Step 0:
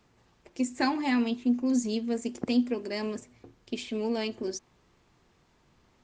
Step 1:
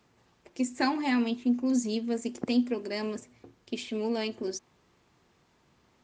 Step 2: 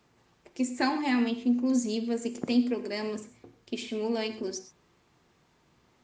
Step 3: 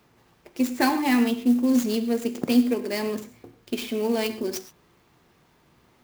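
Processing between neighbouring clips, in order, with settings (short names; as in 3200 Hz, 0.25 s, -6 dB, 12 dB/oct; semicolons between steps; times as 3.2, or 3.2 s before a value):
HPF 90 Hz 6 dB/oct
non-linear reverb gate 0.15 s flat, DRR 10 dB
clock jitter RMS 0.024 ms; gain +5.5 dB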